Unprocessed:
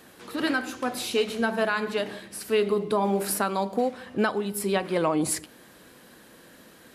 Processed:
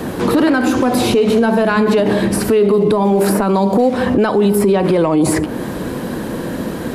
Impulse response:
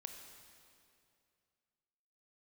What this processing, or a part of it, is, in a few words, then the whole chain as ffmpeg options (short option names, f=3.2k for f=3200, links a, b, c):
mastering chain: -filter_complex "[0:a]equalizer=f=960:t=o:w=0.3:g=4,acrossover=split=350|2300[a][b][c];[a]acompressor=threshold=-42dB:ratio=4[d];[b]acompressor=threshold=-33dB:ratio=4[e];[c]acompressor=threshold=-40dB:ratio=4[f];[d][e][f]amix=inputs=3:normalize=0,acompressor=threshold=-33dB:ratio=2,asoftclip=type=tanh:threshold=-24dB,tiltshelf=f=820:g=8.5,alimiter=level_in=30.5dB:limit=-1dB:release=50:level=0:latency=1,volume=-5dB"